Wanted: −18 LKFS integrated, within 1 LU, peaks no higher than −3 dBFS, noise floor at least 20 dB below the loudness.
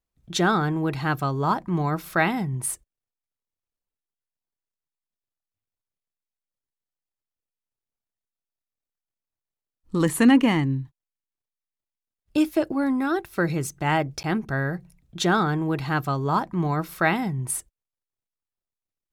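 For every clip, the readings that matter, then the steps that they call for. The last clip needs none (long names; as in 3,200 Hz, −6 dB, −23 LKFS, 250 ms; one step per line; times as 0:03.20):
number of dropouts 1; longest dropout 9.9 ms; integrated loudness −24.0 LKFS; sample peak −7.0 dBFS; target loudness −18.0 LKFS
→ repair the gap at 0:14.23, 9.9 ms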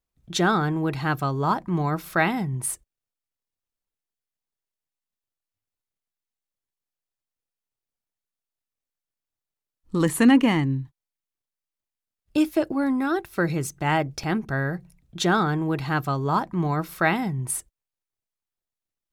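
number of dropouts 0; integrated loudness −24.0 LKFS; sample peak −7.0 dBFS; target loudness −18.0 LKFS
→ level +6 dB
brickwall limiter −3 dBFS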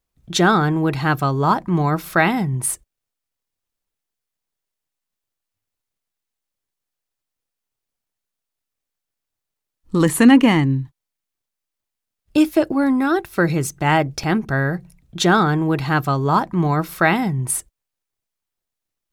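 integrated loudness −18.5 LKFS; sample peak −3.0 dBFS; background noise floor −84 dBFS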